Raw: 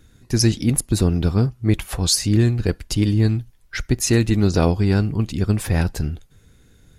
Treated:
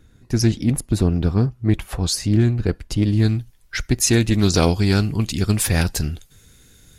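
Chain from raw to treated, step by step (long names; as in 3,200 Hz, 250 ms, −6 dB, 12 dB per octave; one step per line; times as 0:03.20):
high-shelf EQ 2,500 Hz −5.5 dB, from 0:03.13 +4.5 dB, from 0:04.39 +12 dB
highs frequency-modulated by the lows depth 0.16 ms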